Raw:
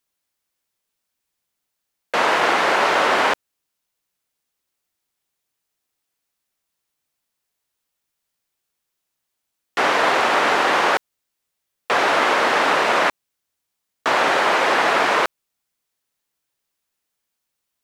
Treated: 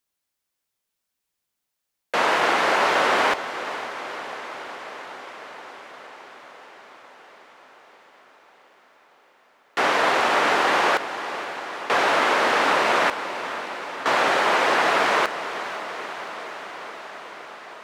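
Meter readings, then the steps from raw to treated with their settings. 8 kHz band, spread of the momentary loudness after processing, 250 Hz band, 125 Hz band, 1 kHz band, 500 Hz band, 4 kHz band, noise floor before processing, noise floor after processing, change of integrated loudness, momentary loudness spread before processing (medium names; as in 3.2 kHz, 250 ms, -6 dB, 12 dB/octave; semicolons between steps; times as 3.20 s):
-2.0 dB, 19 LU, -2.0 dB, -2.0 dB, -2.0 dB, -2.0 dB, -2.0 dB, -79 dBFS, -81 dBFS, -4.0 dB, 6 LU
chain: echo that smears into a reverb 499 ms, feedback 75%, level -12.5 dB; trim -2.5 dB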